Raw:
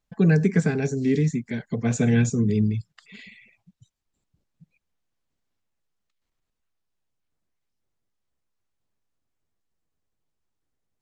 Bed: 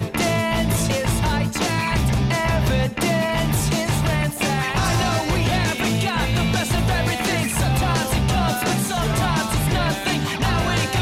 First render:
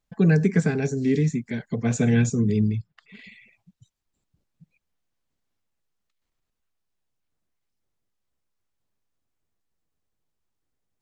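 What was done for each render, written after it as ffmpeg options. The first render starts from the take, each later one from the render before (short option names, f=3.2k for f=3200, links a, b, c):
-filter_complex "[0:a]asettb=1/sr,asplit=3[a][b][c];[a]atrim=end=0.904[d];[b]atrim=start=0.9:end=1.34,asetpts=PTS-STARTPTS,afade=t=in:d=0.004:c=qsin,afade=t=out:st=0.436:d=0.004:c=qsin,bandreject=f=185.7:t=h:w=4,bandreject=f=371.4:t=h:w=4,bandreject=f=557.1:t=h:w=4,bandreject=f=742.8:t=h:w=4,bandreject=f=928.5:t=h:w=4,bandreject=f=1.1142k:t=h:w=4,bandreject=f=1.2999k:t=h:w=4,bandreject=f=1.4856k:t=h:w=4,bandreject=f=1.6713k:t=h:w=4,bandreject=f=1.857k:t=h:w=4,bandreject=f=2.0427k:t=h:w=4,bandreject=f=2.2284k:t=h:w=4,bandreject=f=2.4141k:t=h:w=4,bandreject=f=2.5998k:t=h:w=4,bandreject=f=2.7855k:t=h:w=4,bandreject=f=2.9712k:t=h:w=4,bandreject=f=3.1569k:t=h:w=4,bandreject=f=3.3426k:t=h:w=4,bandreject=f=3.5283k:t=h:w=4,bandreject=f=3.714k:t=h:w=4,bandreject=f=3.8997k:t=h:w=4,bandreject=f=4.0854k:t=h:w=4,bandreject=f=4.2711k:t=h:w=4,bandreject=f=4.4568k:t=h:w=4,bandreject=f=4.6425k:t=h:w=4,bandreject=f=4.8282k:t=h:w=4,bandreject=f=5.0139k:t=h:w=4,bandreject=f=5.1996k:t=h:w=4,bandreject=f=5.3853k:t=h:w=4,bandreject=f=5.571k:t=h:w=4,bandreject=f=5.7567k:t=h:w=4,bandreject=f=5.9424k:t=h:w=4[e];[c]atrim=start=1.336[f];[d][e]acrossfade=d=0.004:c1=hsin:c2=qsin[g];[g][f]acrossfade=d=0.004:c1=qsin:c2=hsin,asettb=1/sr,asplit=3[h][i][j];[h]atrim=end=2.754[k];[i]atrim=start=2.75:end=3.24,asetpts=PTS-STARTPTS,afade=t=in:d=0.004:c=qsin,afade=t=out:st=0.486:d=0.004:c=qsin,adynamicsmooth=sensitivity=3:basefreq=3.2k[l];[j]atrim=start=3.236[m];[k][l]acrossfade=d=0.004:c1=hsin:c2=qsin[n];[n][m]acrossfade=d=0.004:c1=qsin:c2=hsin"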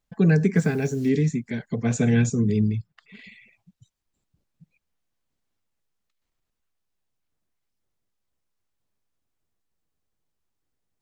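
-filter_complex "[0:a]asplit=3[a][b][c];[a]afade=t=out:st=0.55:d=0.02[d];[b]acrusher=bits=7:mix=0:aa=0.5,afade=t=in:st=0.55:d=0.02,afade=t=out:st=1.08:d=0.02[e];[c]afade=t=in:st=1.08:d=0.02[f];[d][e][f]amix=inputs=3:normalize=0"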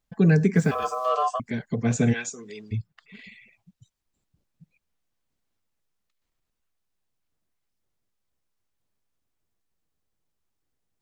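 -filter_complex "[0:a]asettb=1/sr,asplit=3[a][b][c];[a]atrim=end=0.714[d];[b]atrim=start=0.71:end=1.4,asetpts=PTS-STARTPTS,afade=t=in:d=0.004:c=qsin,afade=t=out:st=0.686:d=0.004:c=qsin,aeval=exprs='val(0)*sin(2*PI*890*n/s)':c=same[e];[c]atrim=start=1.396[f];[d][e]acrossfade=d=0.004:c1=hsin:c2=qsin[g];[g][f]acrossfade=d=0.004:c1=qsin:c2=hsin,asplit=3[h][i][j];[h]afade=t=out:st=2.12:d=0.02[k];[i]highpass=810,afade=t=in:st=2.12:d=0.02,afade=t=out:st=2.71:d=0.02[l];[j]afade=t=in:st=2.71:d=0.02[m];[k][l][m]amix=inputs=3:normalize=0"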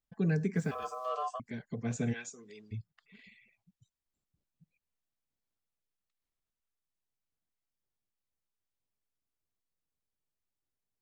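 -af "volume=-11.5dB"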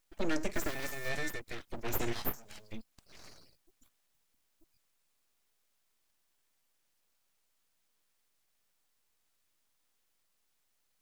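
-af "crystalizer=i=5.5:c=0,aeval=exprs='abs(val(0))':c=same"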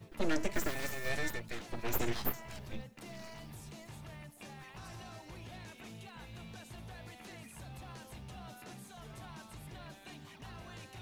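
-filter_complex "[1:a]volume=-29dB[a];[0:a][a]amix=inputs=2:normalize=0"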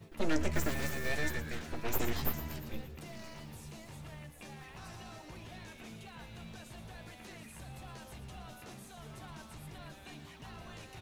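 -filter_complex "[0:a]asplit=2[a][b];[b]adelay=13,volume=-11.5dB[c];[a][c]amix=inputs=2:normalize=0,asplit=8[d][e][f][g][h][i][j][k];[e]adelay=116,afreqshift=-77,volume=-11.5dB[l];[f]adelay=232,afreqshift=-154,volume=-15.8dB[m];[g]adelay=348,afreqshift=-231,volume=-20.1dB[n];[h]adelay=464,afreqshift=-308,volume=-24.4dB[o];[i]adelay=580,afreqshift=-385,volume=-28.7dB[p];[j]adelay=696,afreqshift=-462,volume=-33dB[q];[k]adelay=812,afreqshift=-539,volume=-37.3dB[r];[d][l][m][n][o][p][q][r]amix=inputs=8:normalize=0"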